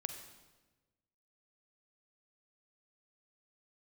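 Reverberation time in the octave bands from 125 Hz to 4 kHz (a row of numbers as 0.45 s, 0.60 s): 1.6 s, 1.4 s, 1.3 s, 1.1 s, 1.1 s, 1.0 s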